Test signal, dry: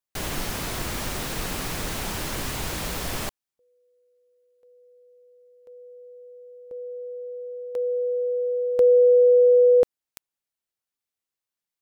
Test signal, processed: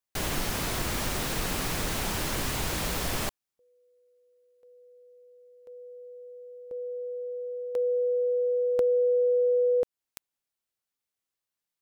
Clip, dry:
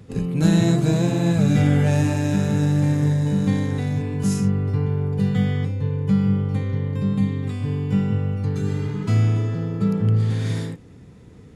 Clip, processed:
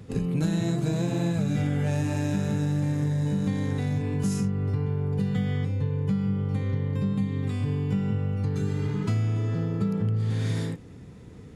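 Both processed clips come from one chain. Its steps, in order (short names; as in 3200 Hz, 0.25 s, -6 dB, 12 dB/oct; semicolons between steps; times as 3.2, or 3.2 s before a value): compressor 5:1, threshold -23 dBFS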